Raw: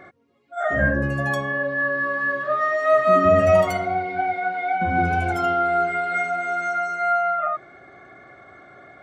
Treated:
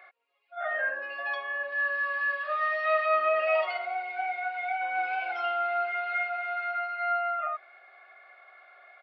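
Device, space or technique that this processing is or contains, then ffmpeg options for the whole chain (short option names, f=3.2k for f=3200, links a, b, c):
musical greeting card: -filter_complex "[0:a]asettb=1/sr,asplit=3[a][b][c];[a]atrim=end=1.724[d];[b]atrim=start=1.72:end=3.06,asetpts=PTS-STARTPTS,afade=t=in:d=0.004:c=qsin,afade=t=out:st=1.336:d=0.004:c=qsin,highshelf=f=3.8k:g=11[e];[c]atrim=start=3.056[f];[d][e]acrossfade=d=0.004:c1=hsin:c2=qsin[g];[g][f]acrossfade=d=0.004:c1=qsin:c2=hsin,aresample=11025,aresample=44100,highpass=f=640:w=0.5412,highpass=f=640:w=1.3066,equalizer=f=2.6k:t=o:w=0.35:g=12,volume=-7.5dB"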